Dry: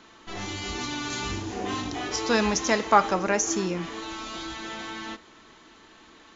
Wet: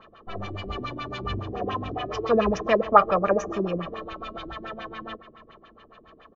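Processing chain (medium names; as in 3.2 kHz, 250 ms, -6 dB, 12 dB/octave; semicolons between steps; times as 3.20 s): treble shelf 5.9 kHz -8 dB; comb 1.7 ms, depth 66%; spring tank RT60 2.9 s, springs 49 ms, chirp 45 ms, DRR 15 dB; LFO low-pass sine 7.1 Hz 270–2800 Hz; peaking EQ 2 kHz -10 dB 0.53 oct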